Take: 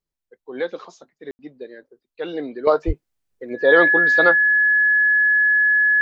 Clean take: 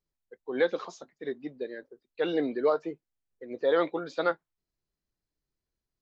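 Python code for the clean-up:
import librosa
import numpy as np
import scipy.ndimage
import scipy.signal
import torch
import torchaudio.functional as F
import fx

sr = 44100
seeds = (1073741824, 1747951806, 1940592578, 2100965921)

y = fx.notch(x, sr, hz=1700.0, q=30.0)
y = fx.fix_deplosive(y, sr, at_s=(2.86,))
y = fx.fix_ambience(y, sr, seeds[0], print_start_s=0.0, print_end_s=0.5, start_s=1.31, end_s=1.39)
y = fx.gain(y, sr, db=fx.steps((0.0, 0.0), (2.67, -9.5)))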